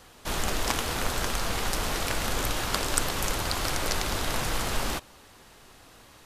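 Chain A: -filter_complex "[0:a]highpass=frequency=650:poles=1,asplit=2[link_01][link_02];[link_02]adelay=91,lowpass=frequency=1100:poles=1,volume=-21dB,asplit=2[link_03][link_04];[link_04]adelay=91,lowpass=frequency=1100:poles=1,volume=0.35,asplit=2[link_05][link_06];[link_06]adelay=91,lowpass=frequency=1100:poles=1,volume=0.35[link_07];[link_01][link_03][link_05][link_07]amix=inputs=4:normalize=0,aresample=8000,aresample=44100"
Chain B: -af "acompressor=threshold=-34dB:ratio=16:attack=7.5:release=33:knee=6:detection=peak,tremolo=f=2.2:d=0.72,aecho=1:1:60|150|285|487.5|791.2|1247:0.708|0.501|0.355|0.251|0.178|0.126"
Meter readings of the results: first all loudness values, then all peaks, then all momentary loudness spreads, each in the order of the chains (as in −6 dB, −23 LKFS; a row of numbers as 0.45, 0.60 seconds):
−33.0, −36.5 LKFS; −12.0, −17.5 dBFS; 2, 12 LU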